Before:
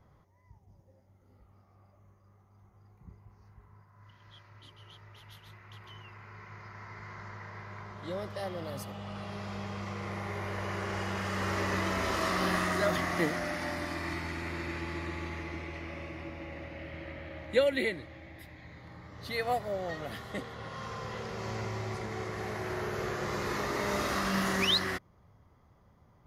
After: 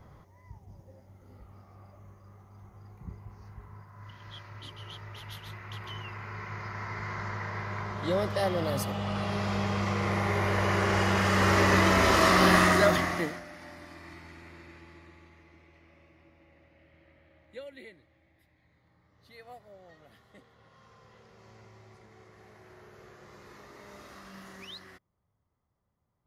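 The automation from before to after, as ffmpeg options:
-af "volume=9dB,afade=t=out:st=12.66:d=0.56:silence=0.281838,afade=t=out:st=13.22:d=0.22:silence=0.334965,afade=t=out:st=14.34:d=0.99:silence=0.473151"

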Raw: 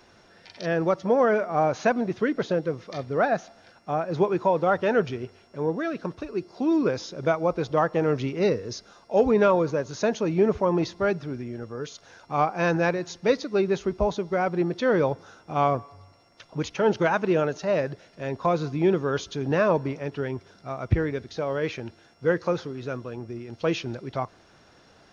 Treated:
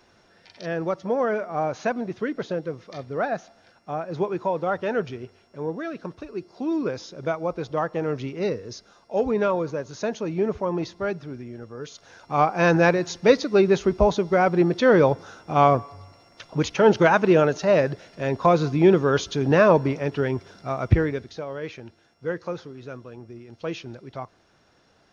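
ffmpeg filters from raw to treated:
-af "volume=5.5dB,afade=t=in:st=11.75:d=1.06:silence=0.375837,afade=t=out:st=20.82:d=0.64:silence=0.281838"

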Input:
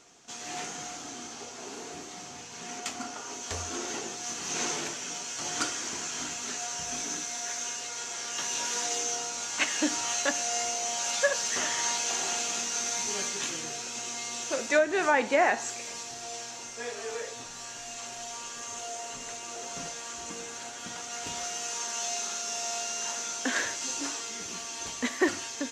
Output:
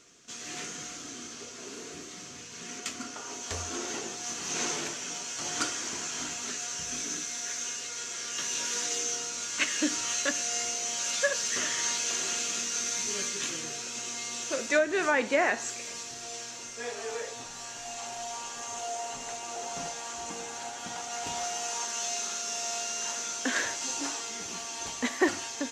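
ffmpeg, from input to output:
-af "asetnsamples=n=441:p=0,asendcmd='3.16 equalizer g -3;6.51 equalizer g -14.5;13.44 equalizer g -7.5;16.83 equalizer g 2.5;17.85 equalizer g 9;21.85 equalizer g -2;23.64 equalizer g 4.5',equalizer=f=810:t=o:w=0.43:g=-15"

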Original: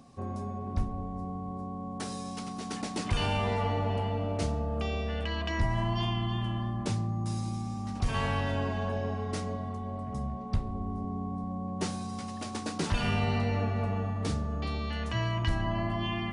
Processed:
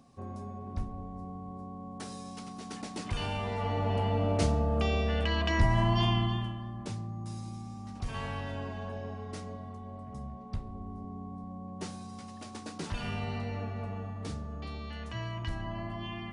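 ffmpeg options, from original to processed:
-af "volume=3.5dB,afade=t=in:st=3.52:d=0.76:silence=0.375837,afade=t=out:st=6.16:d=0.4:silence=0.298538"

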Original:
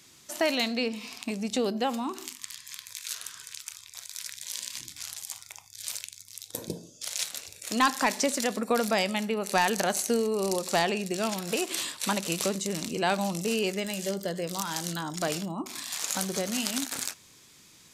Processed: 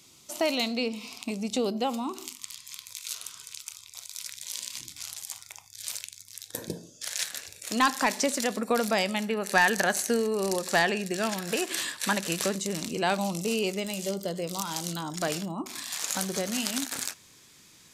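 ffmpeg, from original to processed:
-af "asetnsamples=n=441:p=0,asendcmd='4.25 equalizer g -6;5.17 equalizer g 0;6.34 equalizer g 11.5;7.53 equalizer g 1;9.3 equalizer g 10;12.55 equalizer g 0;13.18 equalizer g -10;15.11 equalizer g 2',equalizer=f=1.7k:t=o:w=0.29:g=-13.5"

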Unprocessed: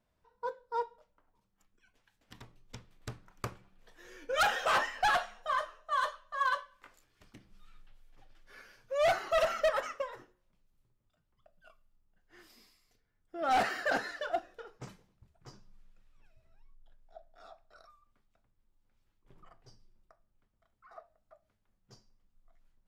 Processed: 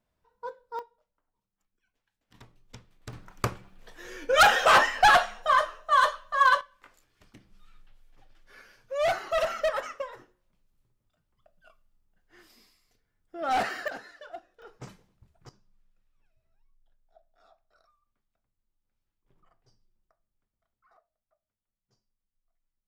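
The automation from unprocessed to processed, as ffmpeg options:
-af "asetnsamples=n=441:p=0,asendcmd='0.79 volume volume -9.5dB;2.34 volume volume 0dB;3.13 volume volume 10dB;6.61 volume volume 1.5dB;13.88 volume volume -9dB;14.62 volume volume 2.5dB;15.49 volume volume -8dB;20.97 volume volume -16dB',volume=-1dB"

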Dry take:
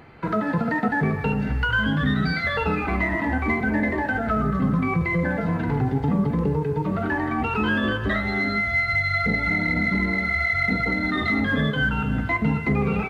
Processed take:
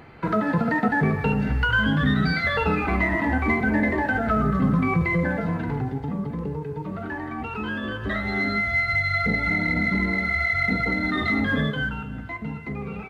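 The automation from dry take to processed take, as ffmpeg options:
-af "volume=7.5dB,afade=t=out:st=5.04:d=1.02:silence=0.398107,afade=t=in:st=7.87:d=0.54:silence=0.473151,afade=t=out:st=11.55:d=0.53:silence=0.334965"

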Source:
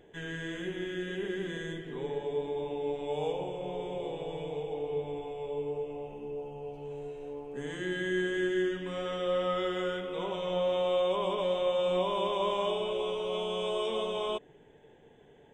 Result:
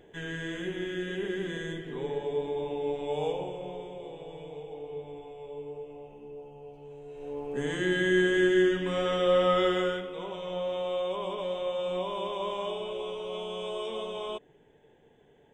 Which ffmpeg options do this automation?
-af "volume=14dB,afade=t=out:st=3.27:d=0.67:silence=0.421697,afade=t=in:st=7.06:d=0.44:silence=0.251189,afade=t=out:st=9.69:d=0.44:silence=0.334965"

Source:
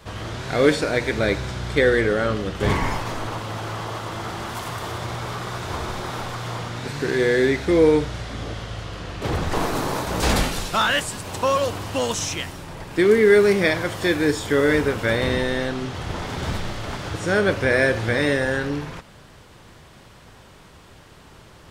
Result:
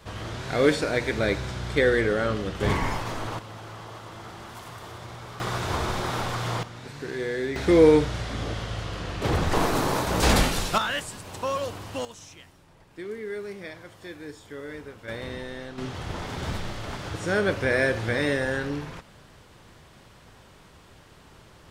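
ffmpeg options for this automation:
-af "asetnsamples=n=441:p=0,asendcmd='3.39 volume volume -11dB;5.4 volume volume 1dB;6.63 volume volume -10.5dB;7.56 volume volume 0dB;10.78 volume volume -8dB;12.05 volume volume -20dB;15.08 volume volume -13.5dB;15.78 volume volume -4.5dB',volume=-3.5dB"

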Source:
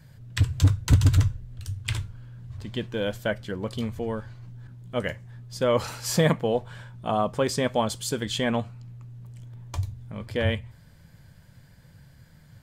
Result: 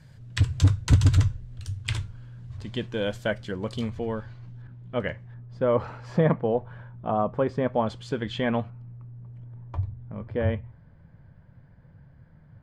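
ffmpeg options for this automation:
-af "asetnsamples=n=441:p=0,asendcmd='3.9 lowpass f 4800;4.62 lowpass f 2700;5.34 lowpass f 1400;7.86 lowpass f 2500;8.7 lowpass f 1300',lowpass=8.3k"

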